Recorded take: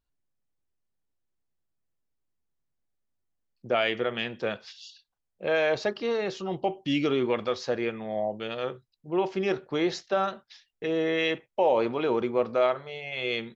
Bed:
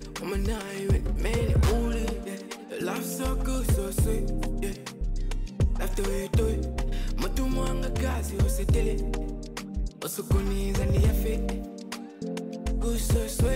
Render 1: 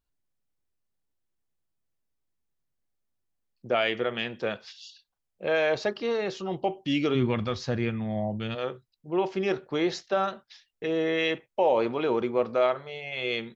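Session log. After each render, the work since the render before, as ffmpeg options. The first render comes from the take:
ffmpeg -i in.wav -filter_complex "[0:a]asplit=3[link_01][link_02][link_03];[link_01]afade=type=out:start_time=7.14:duration=0.02[link_04];[link_02]asubboost=boost=8:cutoff=160,afade=type=in:start_time=7.14:duration=0.02,afade=type=out:start_time=8.54:duration=0.02[link_05];[link_03]afade=type=in:start_time=8.54:duration=0.02[link_06];[link_04][link_05][link_06]amix=inputs=3:normalize=0" out.wav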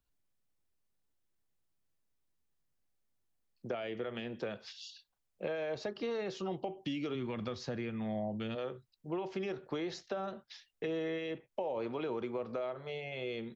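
ffmpeg -i in.wav -filter_complex "[0:a]alimiter=limit=-20.5dB:level=0:latency=1:release=177,acrossover=split=150|670[link_01][link_02][link_03];[link_01]acompressor=threshold=-53dB:ratio=4[link_04];[link_02]acompressor=threshold=-37dB:ratio=4[link_05];[link_03]acompressor=threshold=-45dB:ratio=4[link_06];[link_04][link_05][link_06]amix=inputs=3:normalize=0" out.wav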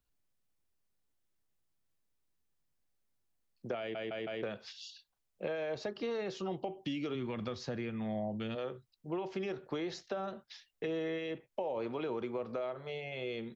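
ffmpeg -i in.wav -filter_complex "[0:a]asplit=5[link_01][link_02][link_03][link_04][link_05];[link_01]atrim=end=3.952[link_06];[link_02]atrim=start=3.788:end=3.952[link_07];[link_03]atrim=start=3.788:end=3.952[link_08];[link_04]atrim=start=3.788:end=3.952[link_09];[link_05]atrim=start=4.428[link_10];[link_06][link_07]acrossfade=duration=0.004:curve1=hsin:curve2=hsin[link_11];[link_11][link_08]acrossfade=duration=0.004:curve1=hsin:curve2=hsin[link_12];[link_12][link_09]acrossfade=duration=0.004:curve1=hsin:curve2=hsin[link_13];[link_13][link_10]acrossfade=duration=0.004:curve1=hsin:curve2=hsin" out.wav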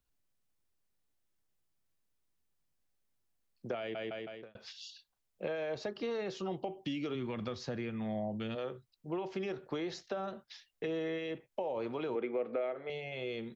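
ffmpeg -i in.wav -filter_complex "[0:a]asettb=1/sr,asplit=3[link_01][link_02][link_03];[link_01]atrim=end=12.154[link_04];[link_02]atrim=start=12.15:end=12.9,asetpts=PTS-STARTPTS,afade=type=in:duration=0.004:curve=qsin,afade=type=out:start_time=0.746:duration=0.004:curve=qsin,highpass=240,equalizer=frequency=290:width_type=q:width=4:gain=7,equalizer=frequency=480:width_type=q:width=4:gain=5,equalizer=frequency=720:width_type=q:width=4:gain=3,equalizer=frequency=1000:width_type=q:width=4:gain=-7,equalizer=frequency=2100:width_type=q:width=4:gain=7,lowpass=frequency=3100:width=0.5412,lowpass=frequency=3100:width=1.3066[link_05];[link_03]atrim=start=12.896[link_06];[link_04][link_05]acrossfade=duration=0.004:curve1=hsin:curve2=qsin[link_07];[link_07][link_06]acrossfade=duration=0.004:curve1=qsin:curve2=hsin,asplit=2[link_08][link_09];[link_08]atrim=end=4.55,asetpts=PTS-STARTPTS,afade=type=out:start_time=4.07:duration=0.48[link_10];[link_09]atrim=start=4.55,asetpts=PTS-STARTPTS,afade=type=in:duration=0.004:curve=hsin[link_11];[link_10][link_11]concat=n=2:v=0:a=1" out.wav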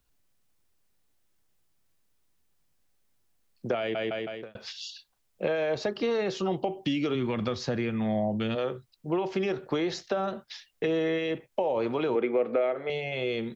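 ffmpeg -i in.wav -af "volume=9dB" out.wav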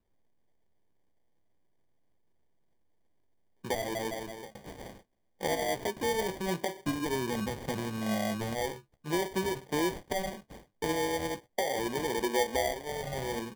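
ffmpeg -i in.wav -af "flanger=delay=9.7:depth=5.2:regen=51:speed=1.4:shape=sinusoidal,acrusher=samples=33:mix=1:aa=0.000001" out.wav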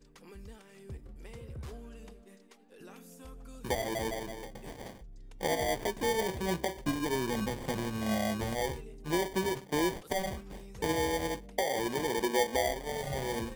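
ffmpeg -i in.wav -i bed.wav -filter_complex "[1:a]volume=-20.5dB[link_01];[0:a][link_01]amix=inputs=2:normalize=0" out.wav

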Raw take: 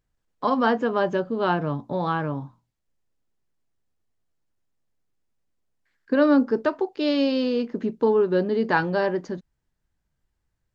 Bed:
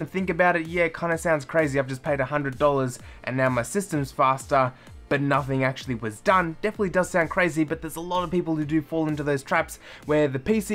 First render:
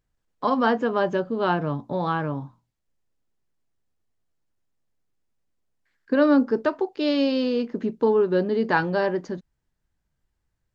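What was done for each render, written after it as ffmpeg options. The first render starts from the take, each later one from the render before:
ffmpeg -i in.wav -af anull out.wav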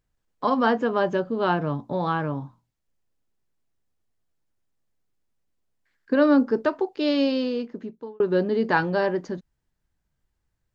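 ffmpeg -i in.wav -filter_complex "[0:a]asplit=2[link_01][link_02];[link_01]atrim=end=8.2,asetpts=PTS-STARTPTS,afade=type=out:start_time=7.25:duration=0.95[link_03];[link_02]atrim=start=8.2,asetpts=PTS-STARTPTS,afade=type=in:duration=0.004:curve=hsin[link_04];[link_03][link_04]concat=n=2:v=0:a=1" out.wav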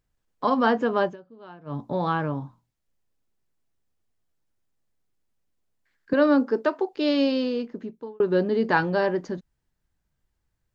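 ffmpeg -i in.wav -filter_complex "[0:a]asettb=1/sr,asplit=3[link_01][link_02][link_03];[link_01]atrim=end=6.134[link_04];[link_02]atrim=start=6.13:end=6.93,asetpts=PTS-STARTPTS,afade=type=in:duration=0.004:curve=qsin,afade=type=out:start_time=0.796:duration=0.004:curve=qsin,highpass=250[link_05];[link_03]atrim=start=6.926[link_06];[link_04][link_05]acrossfade=duration=0.004:curve1=hsin:curve2=qsin[link_07];[link_07][link_06]acrossfade=duration=0.004:curve1=qsin:curve2=hsin,asplit=3[link_08][link_09][link_10];[link_08]atrim=end=1.16,asetpts=PTS-STARTPTS,afade=type=out:start_time=1.03:duration=0.13:silence=0.0794328[link_11];[link_09]atrim=start=1.16:end=1.65,asetpts=PTS-STARTPTS,volume=-22dB[link_12];[link_10]atrim=start=1.65,asetpts=PTS-STARTPTS,afade=type=in:duration=0.13:silence=0.0794328[link_13];[link_11][link_12][link_13]concat=n=3:v=0:a=1" out.wav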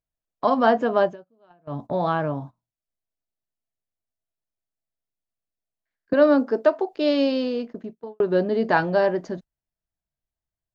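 ffmpeg -i in.wav -af "equalizer=frequency=660:width=5.3:gain=11.5,agate=range=-15dB:threshold=-37dB:ratio=16:detection=peak" out.wav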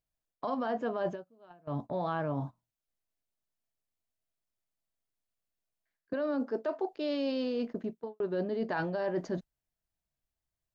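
ffmpeg -i in.wav -af "alimiter=limit=-13dB:level=0:latency=1,areverse,acompressor=threshold=-30dB:ratio=6,areverse" out.wav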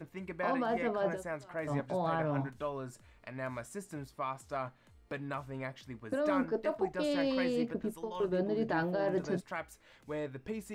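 ffmpeg -i in.wav -i bed.wav -filter_complex "[1:a]volume=-17dB[link_01];[0:a][link_01]amix=inputs=2:normalize=0" out.wav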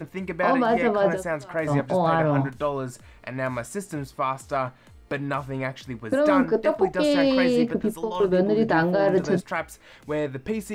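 ffmpeg -i in.wav -af "volume=11.5dB" out.wav

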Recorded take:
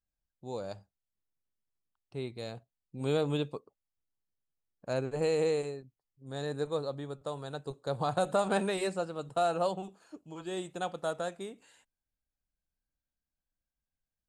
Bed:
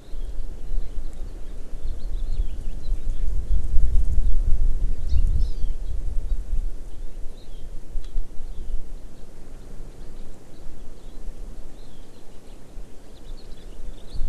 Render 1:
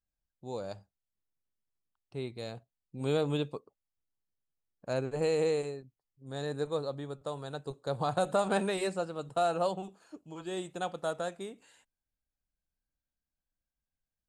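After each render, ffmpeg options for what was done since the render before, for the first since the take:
ffmpeg -i in.wav -af anull out.wav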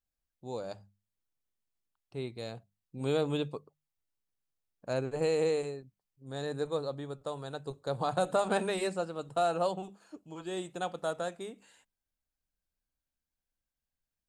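ffmpeg -i in.wav -af "bandreject=frequency=50:width_type=h:width=6,bandreject=frequency=100:width_type=h:width=6,bandreject=frequency=150:width_type=h:width=6,bandreject=frequency=200:width_type=h:width=6" out.wav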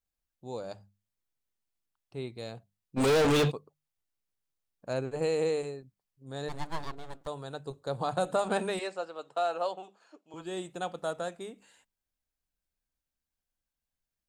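ffmpeg -i in.wav -filter_complex "[0:a]asplit=3[link_01][link_02][link_03];[link_01]afade=type=out:start_time=2.96:duration=0.02[link_04];[link_02]asplit=2[link_05][link_06];[link_06]highpass=frequency=720:poles=1,volume=38dB,asoftclip=type=tanh:threshold=-17.5dB[link_07];[link_05][link_07]amix=inputs=2:normalize=0,lowpass=frequency=4600:poles=1,volume=-6dB,afade=type=in:start_time=2.96:duration=0.02,afade=type=out:start_time=3.5:duration=0.02[link_08];[link_03]afade=type=in:start_time=3.5:duration=0.02[link_09];[link_04][link_08][link_09]amix=inputs=3:normalize=0,asplit=3[link_10][link_11][link_12];[link_10]afade=type=out:start_time=6.48:duration=0.02[link_13];[link_11]aeval=exprs='abs(val(0))':channel_layout=same,afade=type=in:start_time=6.48:duration=0.02,afade=type=out:start_time=7.26:duration=0.02[link_14];[link_12]afade=type=in:start_time=7.26:duration=0.02[link_15];[link_13][link_14][link_15]amix=inputs=3:normalize=0,asettb=1/sr,asplit=3[link_16][link_17][link_18];[link_16]atrim=end=8.794[link_19];[link_17]atrim=start=8.79:end=10.34,asetpts=PTS-STARTPTS,afade=type=in:duration=0.004:curve=qsin,afade=type=out:start_time=1.546:duration=0.004:curve=qsin,highpass=480,lowpass=5700[link_20];[link_18]atrim=start=10.336[link_21];[link_19][link_20]acrossfade=duration=0.004:curve1=hsin:curve2=qsin[link_22];[link_22][link_21]acrossfade=duration=0.004:curve1=qsin:curve2=hsin" out.wav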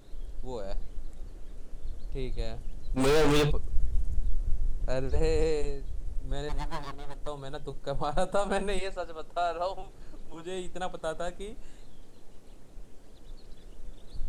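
ffmpeg -i in.wav -i bed.wav -filter_complex "[1:a]volume=-9dB[link_01];[0:a][link_01]amix=inputs=2:normalize=0" out.wav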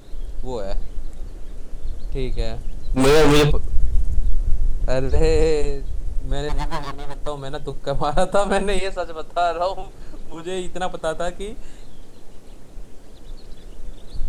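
ffmpeg -i in.wav -af "volume=9.5dB,alimiter=limit=-2dB:level=0:latency=1" out.wav

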